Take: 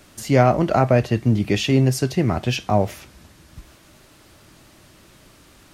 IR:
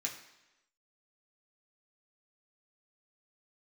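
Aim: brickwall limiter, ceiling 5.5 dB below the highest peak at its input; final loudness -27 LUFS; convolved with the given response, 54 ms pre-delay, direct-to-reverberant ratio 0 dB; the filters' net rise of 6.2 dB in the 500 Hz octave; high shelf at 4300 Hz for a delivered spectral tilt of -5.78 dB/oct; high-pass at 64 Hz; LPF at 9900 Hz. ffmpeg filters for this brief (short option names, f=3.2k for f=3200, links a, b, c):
-filter_complex "[0:a]highpass=64,lowpass=9.9k,equalizer=f=500:t=o:g=8,highshelf=f=4.3k:g=6.5,alimiter=limit=-5.5dB:level=0:latency=1,asplit=2[a][b];[1:a]atrim=start_sample=2205,adelay=54[c];[b][c]afir=irnorm=-1:irlink=0,volume=-1dB[d];[a][d]amix=inputs=2:normalize=0,volume=-11.5dB"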